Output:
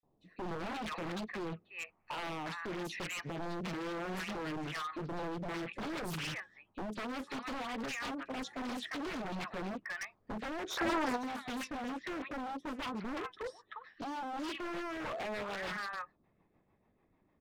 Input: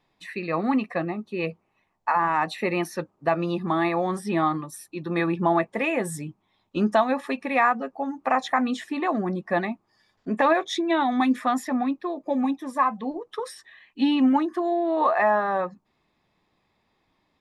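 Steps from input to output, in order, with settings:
three-band delay without the direct sound highs, lows, mids 30/380 ms, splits 1,100/3,800 Hz
low-pass that shuts in the quiet parts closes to 1,500 Hz, open at −18.5 dBFS
dynamic equaliser 790 Hz, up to −8 dB, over −38 dBFS, Q 1.1
downward compressor 6 to 1, threshold −27 dBFS, peak gain reduction 10 dB
brickwall limiter −26 dBFS, peak gain reduction 7.5 dB
rotating-speaker cabinet horn 0.85 Hz, later 6.7 Hz, at 0:02.97
wave folding −35.5 dBFS
gain on a spectral selection 0:10.70–0:11.16, 330–1,600 Hz +11 dB
highs frequency-modulated by the lows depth 0.71 ms
level +1.5 dB

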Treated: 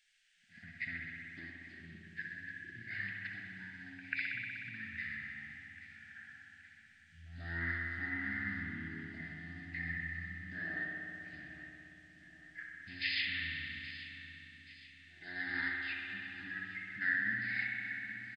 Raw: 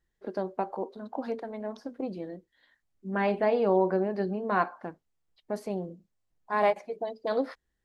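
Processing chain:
on a send: repeating echo 353 ms, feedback 46%, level −17 dB
on the sum: wrong playback speed 78 rpm record played at 33 rpm
high-shelf EQ 3,600 Hz −6.5 dB
in parallel at −1.5 dB: downward compressor, threshold −37 dBFS, peak gain reduction 16.5 dB
on the sum: elliptic high-pass filter 1,700 Hz, stop band 40 dB
echo ahead of the sound 140 ms −19 dB
spring reverb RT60 3.1 s, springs 59 ms, chirp 70 ms, DRR −1.5 dB
level +16 dB

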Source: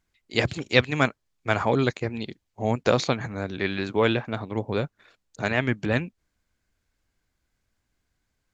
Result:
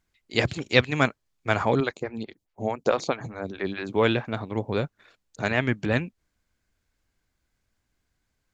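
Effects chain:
0:01.80–0:03.93: phaser with staggered stages 4.7 Hz

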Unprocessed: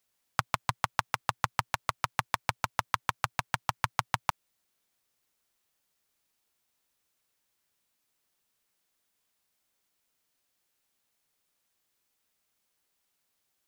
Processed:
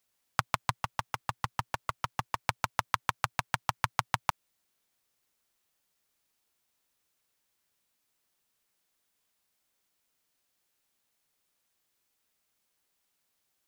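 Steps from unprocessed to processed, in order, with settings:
0:00.79–0:02.48: hard clipping −17.5 dBFS, distortion −10 dB

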